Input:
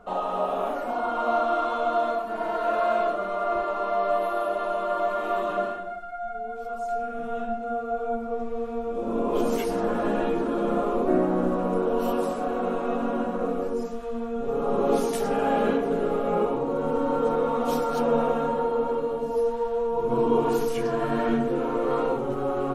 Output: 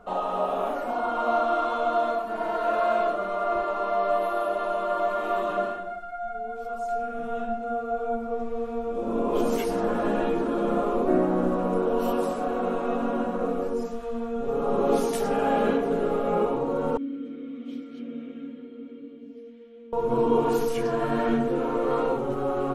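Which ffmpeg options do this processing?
-filter_complex "[0:a]asettb=1/sr,asplit=3[a][b][c];[a]atrim=end=16.974[d];[b]atrim=start=16.97:end=19.93,asetpts=PTS-STARTPTS,afade=t=in:d=0.004:c=qsin,afade=t=out:st=2.956:d=0.004:c=qsin,asplit=3[e][f][g];[e]bandpass=f=270:t=q:w=8,volume=0dB[h];[f]bandpass=f=2.29k:t=q:w=8,volume=-6dB[i];[g]bandpass=f=3.01k:t=q:w=8,volume=-9dB[j];[h][i][j]amix=inputs=3:normalize=0[k];[c]atrim=start=19.926[l];[d][k]acrossfade=d=0.004:c1=hsin:c2=qsin[m];[m][l]acrossfade=d=0.004:c1=qsin:c2=hsin"

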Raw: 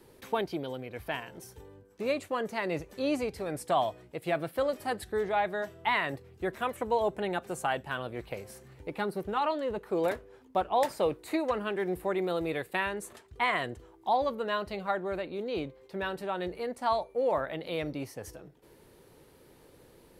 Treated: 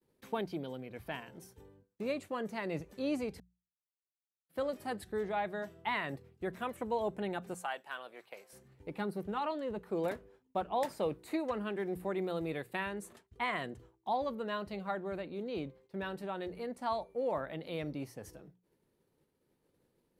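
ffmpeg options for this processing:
-filter_complex "[0:a]asettb=1/sr,asplit=3[a][b][c];[a]atrim=end=7.544[d];[b]atrim=start=7.54:end=8.53,asetpts=PTS-STARTPTS,afade=t=in:d=0.004:c=qsin,afade=t=out:st=0.986:d=0.004:c=qsin,highpass=670[e];[c]atrim=start=8.526[f];[d][e]acrossfade=d=0.004:c1=hsin:c2=qsin[g];[g][f]acrossfade=d=0.004:c1=qsin:c2=hsin,asplit=3[h][i][j];[h]atrim=end=3.4,asetpts=PTS-STARTPTS,afade=t=out:st=3.396:d=0.004:c=hsin[k];[i]atrim=start=3.4:end=4.49,asetpts=PTS-STARTPTS,volume=0[l];[j]atrim=start=4.49,asetpts=PTS-STARTPTS,afade=t=in:d=0.004:c=hsin[m];[k][l][m]concat=n=3:v=0:a=1,agate=range=-33dB:threshold=-47dB:ratio=3:detection=peak,equalizer=f=190:t=o:w=1.2:g=7,bandreject=f=60:t=h:w=6,bandreject=f=120:t=h:w=6,bandreject=f=180:t=h:w=6,volume=-7dB"

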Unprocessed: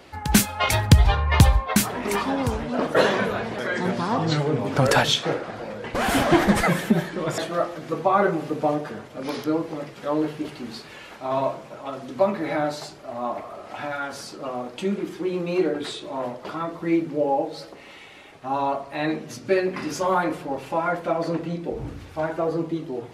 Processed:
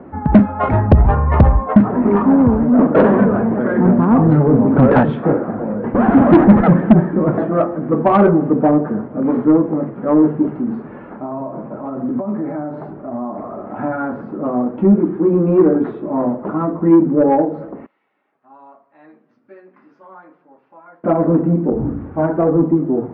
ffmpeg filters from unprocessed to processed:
-filter_complex "[0:a]asettb=1/sr,asplit=3[a][b][c];[a]atrim=end=10.574[d];[b]atrim=start=10.57:end=13.76,asetpts=PTS-STARTPTS,afade=t=in:d=0.004:c=qsin,afade=t=out:st=3.186:d=0.004:c=qsin,acompressor=threshold=-32dB:ratio=6:attack=3.2:release=140:knee=1:detection=peak[e];[c]atrim=start=13.756[f];[d][e]acrossfade=d=0.004:c1=hsin:c2=qsin[g];[g][f]acrossfade=d=0.004:c1=qsin:c2=hsin,asettb=1/sr,asplit=3[h][i][j];[h]atrim=end=17.864[k];[i]atrim=start=17.86:end=21.04,asetpts=PTS-STARTPTS,afade=t=in:d=0.004:c=qsin,afade=t=out:st=3.176:d=0.004:c=qsin,bandpass=f=5.5k:t=q:w=3[l];[j]atrim=start=21.036[m];[k][l]acrossfade=d=0.004:c1=hsin:c2=qsin[n];[n][m]acrossfade=d=0.004:c1=qsin:c2=hsin,lowpass=f=1.4k:w=0.5412,lowpass=f=1.4k:w=1.3066,equalizer=f=230:t=o:w=1.3:g=13,acontrast=88,volume=-1dB"

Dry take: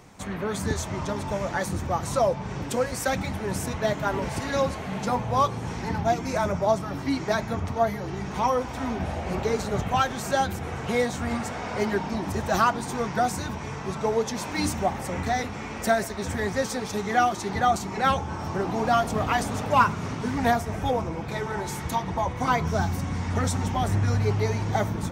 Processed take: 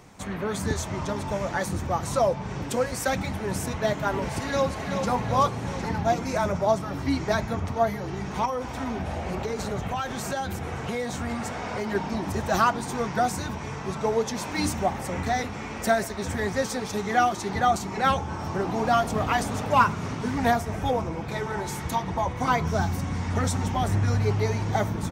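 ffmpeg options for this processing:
-filter_complex "[0:a]asplit=2[a][b];[b]afade=t=in:st=4.38:d=0.01,afade=t=out:st=5.1:d=0.01,aecho=0:1:380|760|1140|1520|1900|2280|2660|3040:0.473151|0.283891|0.170334|0.102201|0.0613204|0.0367922|0.0220753|0.0132452[c];[a][c]amix=inputs=2:normalize=0,asettb=1/sr,asplit=3[d][e][f];[d]atrim=end=6.994[g];[e]atrim=start=6.99:end=7.46,asetpts=PTS-STARTPTS,afade=t=in:d=0.004:c=qsin,afade=t=out:st=0.466:d=0.004:c=qsin,equalizer=f=73:w=1.5:g=10[h];[f]atrim=start=7.456[i];[g][h]acrossfade=d=0.004:c1=hsin:c2=qsin[j];[j][i]acrossfade=d=0.004:c1=qsin:c2=hsin,asettb=1/sr,asplit=3[k][l][m];[k]atrim=end=8.454[n];[l]atrim=start=8.45:end=11.95,asetpts=PTS-STARTPTS,afade=t=in:d=0.004:c=qsin,afade=t=out:st=3.496:d=0.004:c=qsin,acompressor=threshold=-25dB:ratio=6:attack=3.2:release=140:knee=1:detection=peak[o];[m]atrim=start=11.946[p];[n][o]acrossfade=d=0.004:c1=hsin:c2=qsin[q];[q][p]acrossfade=d=0.004:c1=qsin:c2=hsin"

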